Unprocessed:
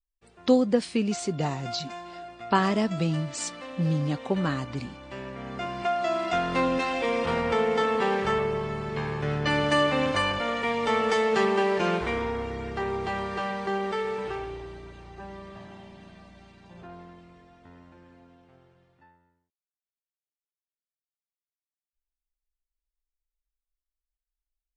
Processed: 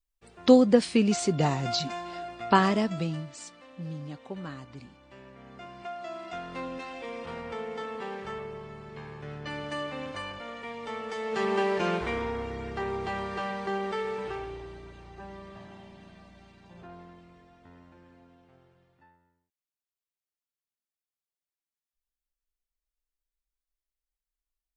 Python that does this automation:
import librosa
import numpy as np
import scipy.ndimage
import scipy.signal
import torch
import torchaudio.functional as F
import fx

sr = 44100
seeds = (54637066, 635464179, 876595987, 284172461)

y = fx.gain(x, sr, db=fx.line((2.45, 3.0), (3.03, -4.0), (3.45, -12.0), (11.14, -12.0), (11.54, -2.5)))